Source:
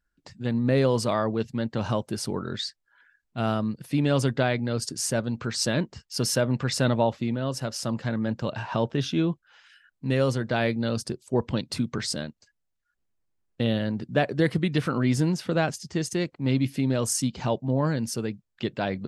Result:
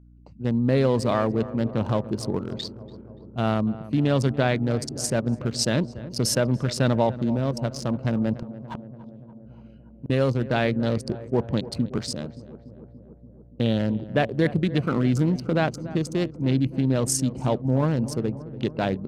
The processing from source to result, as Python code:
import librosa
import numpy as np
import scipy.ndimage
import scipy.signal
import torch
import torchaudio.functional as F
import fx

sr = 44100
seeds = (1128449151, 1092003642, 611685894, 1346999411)

p1 = fx.wiener(x, sr, points=25)
p2 = fx.add_hum(p1, sr, base_hz=60, snr_db=26)
p3 = fx.gate_flip(p2, sr, shuts_db=-24.0, range_db=-41, at=(8.36, 10.1))
p4 = fx.level_steps(p3, sr, step_db=15)
p5 = p3 + (p4 * librosa.db_to_amplitude(1.0))
p6 = fx.echo_filtered(p5, sr, ms=288, feedback_pct=74, hz=1300.0, wet_db=-15.0)
y = p6 * librosa.db_to_amplitude(-1.5)